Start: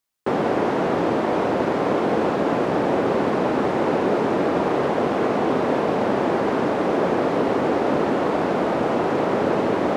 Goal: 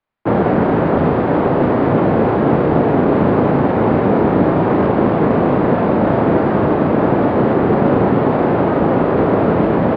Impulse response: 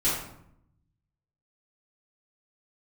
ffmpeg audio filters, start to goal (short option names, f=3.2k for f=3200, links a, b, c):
-filter_complex "[0:a]aresample=11025,aresample=44100,asplit=3[a][b][c];[b]asetrate=22050,aresample=44100,atempo=2,volume=-1dB[d];[c]asetrate=35002,aresample=44100,atempo=1.25992,volume=-1dB[e];[a][d][e]amix=inputs=3:normalize=0,asplit=2[f][g];[g]adelay=36,volume=-7dB[h];[f][h]amix=inputs=2:normalize=0,acrossover=split=220|590|2100[i][j][k][l];[l]adynamicsmooth=sensitivity=2:basefreq=2.7k[m];[i][j][k][m]amix=inputs=4:normalize=0,volume=2.5dB"